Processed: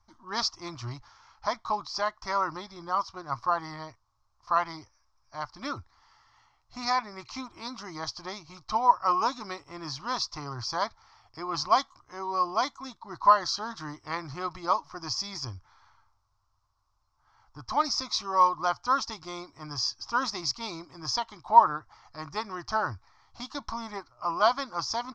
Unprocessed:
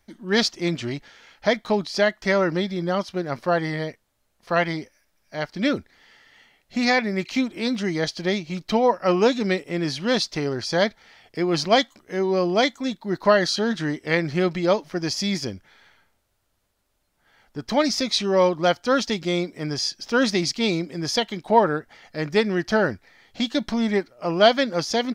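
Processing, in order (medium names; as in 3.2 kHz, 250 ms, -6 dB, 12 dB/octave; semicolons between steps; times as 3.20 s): FFT filter 120 Hz 0 dB, 180 Hz -23 dB, 310 Hz -14 dB, 480 Hz -22 dB, 1.1 kHz +9 dB, 1.7 kHz -14 dB, 3.2 kHz -16 dB, 5.4 kHz -1 dB, 11 kHz -29 dB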